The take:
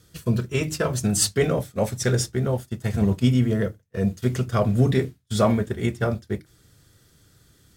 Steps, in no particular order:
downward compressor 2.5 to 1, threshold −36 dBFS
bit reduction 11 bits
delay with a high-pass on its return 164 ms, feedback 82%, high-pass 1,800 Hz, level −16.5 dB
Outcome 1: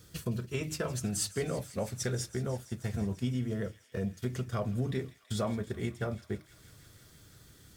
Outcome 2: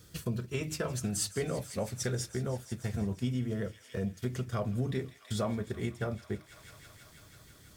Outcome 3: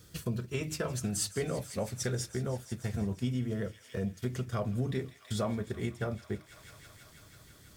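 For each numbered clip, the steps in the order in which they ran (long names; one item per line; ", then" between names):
bit reduction, then downward compressor, then delay with a high-pass on its return
bit reduction, then delay with a high-pass on its return, then downward compressor
delay with a high-pass on its return, then bit reduction, then downward compressor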